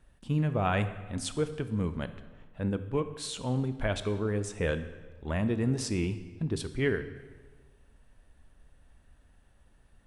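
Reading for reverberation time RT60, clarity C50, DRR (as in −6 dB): 1.5 s, 12.0 dB, 10.5 dB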